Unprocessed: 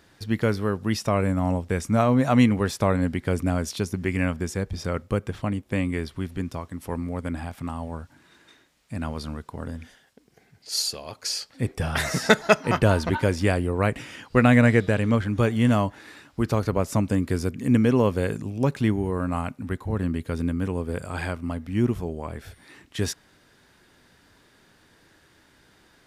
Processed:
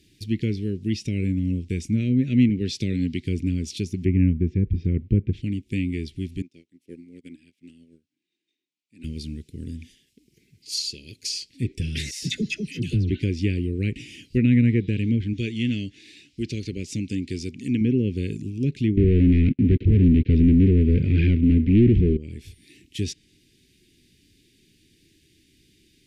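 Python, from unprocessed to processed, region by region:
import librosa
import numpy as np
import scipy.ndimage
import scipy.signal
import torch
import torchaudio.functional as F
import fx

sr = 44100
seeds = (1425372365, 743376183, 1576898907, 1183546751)

y = fx.chain(x, sr, fx.highpass(hz=89.0, slope=12),
    fx.peak_eq(hz=4400.0, db=7.5, octaves=1.3), at=(2.49, 3.25))
y = fx.chain(y, sr, fx.lowpass(hz=2100.0, slope=12),
    fx.low_shelf(hz=310.0, db=8.5), at=(4.05, 5.33))
y = fx.chain(y, sr, fx.highpass(hz=300.0, slope=12),
    fx.air_absorb(metres=56.0),
    fx.upward_expand(threshold_db=-44.0, expansion=2.5), at=(6.42, 9.04))
y = fx.chain(y, sr, fx.peak_eq(hz=900.0, db=-15.0, octaves=2.0),
    fx.dispersion(late='lows', ms=114.0, hz=930.0), at=(12.11, 13.1))
y = fx.chain(y, sr, fx.lowpass(hz=5700.0, slope=12),
    fx.tilt_eq(slope=2.0), at=(15.33, 17.81))
y = fx.chain(y, sr, fx.leveller(passes=5),
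    fx.air_absorb(metres=220.0), at=(18.97, 22.17))
y = scipy.signal.sosfilt(scipy.signal.ellip(3, 1.0, 60, [360.0, 2400.0], 'bandstop', fs=sr, output='sos'), y)
y = fx.env_lowpass_down(y, sr, base_hz=2100.0, full_db=-17.5)
y = y * 10.0 ** (1.0 / 20.0)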